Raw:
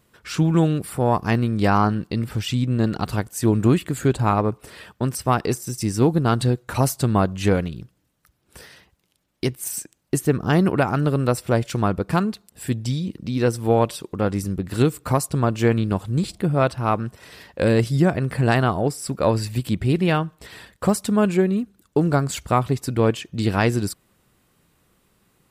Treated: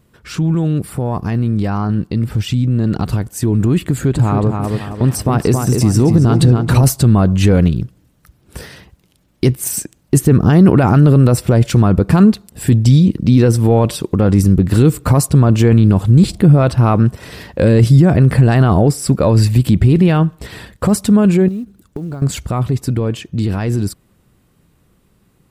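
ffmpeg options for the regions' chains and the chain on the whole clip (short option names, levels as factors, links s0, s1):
-filter_complex "[0:a]asettb=1/sr,asplit=3[s0][s1][s2];[s0]atrim=end=3.864[s3];[s1]atrim=start=3.86:end=6.84,asetpts=PTS-STARTPTS,afade=t=in:d=0.004:c=qsin,afade=t=out:st=2.976:d=0.004:c=qsin,acompressor=threshold=0.0891:ratio=3:attack=3.2:release=140:knee=1:detection=peak,asplit=2[s4][s5];[s5]adelay=272,lowpass=f=3300:p=1,volume=0.531,asplit=2[s6][s7];[s7]adelay=272,lowpass=f=3300:p=1,volume=0.4,asplit=2[s8][s9];[s9]adelay=272,lowpass=f=3300:p=1,volume=0.4,asplit=2[s10][s11];[s11]adelay=272,lowpass=f=3300:p=1,volume=0.4,asplit=2[s12][s13];[s13]adelay=272,lowpass=f=3300:p=1,volume=0.4[s14];[s4][s6][s8][s10][s12][s14]amix=inputs=6:normalize=0,atrim=end_sample=131418[s15];[s2]atrim=start=6.836[s16];[s3][s15]acrossfade=d=0.004:c1=hsin:c2=qsin[s17];[s17][s16]acrossfade=d=0.004:c1=qsin:c2=hsin,asettb=1/sr,asplit=3[s18][s19][s20];[s18]atrim=end=21.484[s21];[s19]atrim=start=21.48:end=22.22,asetpts=PTS-STARTPTS,afade=t=in:d=0.004:c=qsin,afade=t=out:st=0.736:d=0.004:c=qsin,acompressor=threshold=0.0251:ratio=8:attack=3.2:release=140:knee=1:detection=peak,acrusher=bits=7:mode=log:mix=0:aa=0.000001[s22];[s20]atrim=start=22.216[s23];[s21][s22]acrossfade=d=0.004:c1=hsin:c2=qsin[s24];[s24][s23]acrossfade=d=0.004:c1=qsin:c2=hsin,lowshelf=f=380:g=10,alimiter=limit=0.335:level=0:latency=1:release=15,dynaudnorm=f=290:g=31:m=3.16,volume=1.12"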